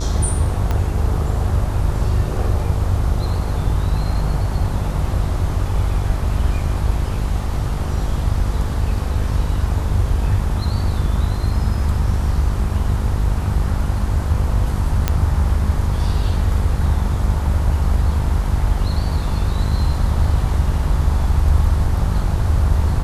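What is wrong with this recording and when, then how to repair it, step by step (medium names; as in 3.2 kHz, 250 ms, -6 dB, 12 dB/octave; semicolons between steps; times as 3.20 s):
buzz 50 Hz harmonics 26 -22 dBFS
0.71 s: pop -9 dBFS
15.08 s: pop -3 dBFS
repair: de-click; de-hum 50 Hz, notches 26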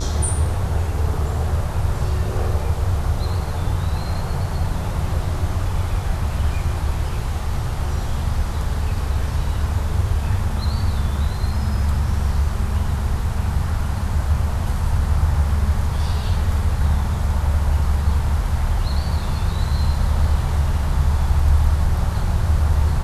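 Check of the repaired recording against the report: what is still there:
0.71 s: pop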